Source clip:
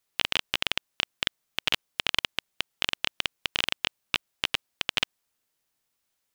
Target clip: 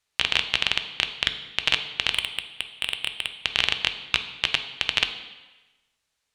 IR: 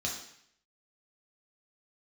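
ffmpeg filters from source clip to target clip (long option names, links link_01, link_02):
-filter_complex "[0:a]lowpass=8400,asettb=1/sr,asplit=3[link_01][link_02][link_03];[link_01]atrim=end=2.104[link_04];[link_02]atrim=start=2.1:end=3.35,asetpts=PTS-STARTPTS,afade=type=in:duration=0.004:curve=qsin,afade=type=out:start_time=1.246:duration=0.004:curve=qsin,volume=14.5dB,asoftclip=hard,volume=-14.5dB[link_05];[link_03]atrim=start=3.346[link_06];[link_04][link_05]acrossfade=duration=0.004:curve1=hsin:curve2=qsin[link_07];[link_07][link_06]acrossfade=duration=0.004:curve1=qsin:curve2=hsin,asplit=2[link_08][link_09];[1:a]atrim=start_sample=2205,asetrate=27342,aresample=44100[link_10];[link_09][link_10]afir=irnorm=-1:irlink=0,volume=-13.5dB[link_11];[link_08][link_11]amix=inputs=2:normalize=0,volume=2dB"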